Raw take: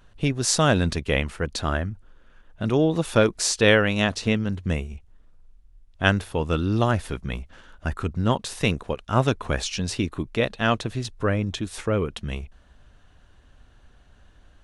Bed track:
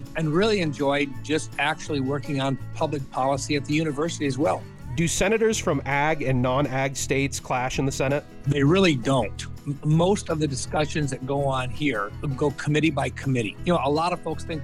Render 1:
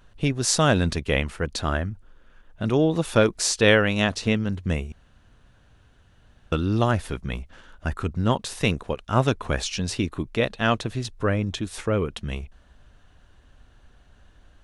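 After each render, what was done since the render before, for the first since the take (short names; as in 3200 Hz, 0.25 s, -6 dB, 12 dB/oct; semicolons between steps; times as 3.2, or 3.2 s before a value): 4.92–6.52 room tone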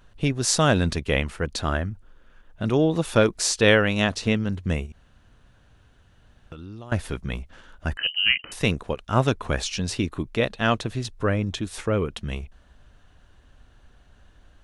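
4.86–6.92 compressor, threshold -37 dBFS; 7.97–8.52 inverted band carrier 3000 Hz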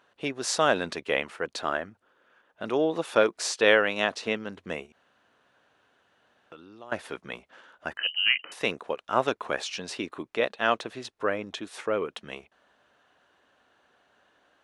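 HPF 430 Hz 12 dB/oct; high shelf 4400 Hz -10.5 dB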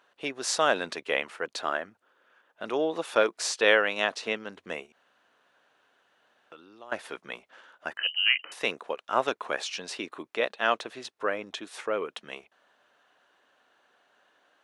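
HPF 390 Hz 6 dB/oct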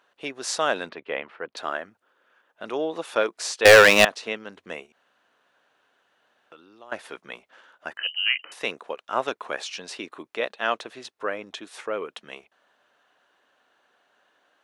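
0.89–1.57 air absorption 340 m; 3.65–4.05 sample leveller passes 5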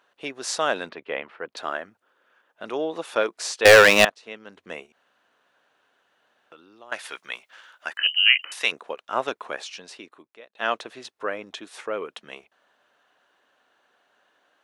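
4.1–4.78 fade in, from -20 dB; 6.92–8.72 tilt shelf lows -8.5 dB, about 860 Hz; 9.33–10.55 fade out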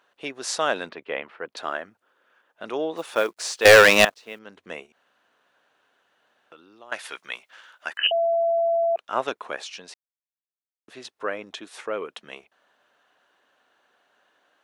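2.97–4.39 companded quantiser 6-bit; 8.11–8.96 bleep 672 Hz -18.5 dBFS; 9.94–10.88 mute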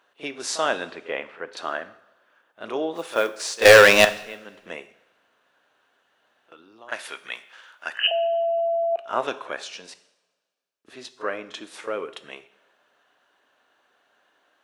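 pre-echo 35 ms -14 dB; two-slope reverb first 0.67 s, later 1.8 s, from -18 dB, DRR 11.5 dB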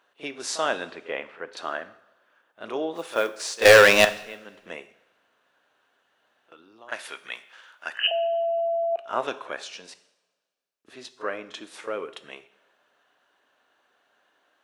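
gain -2 dB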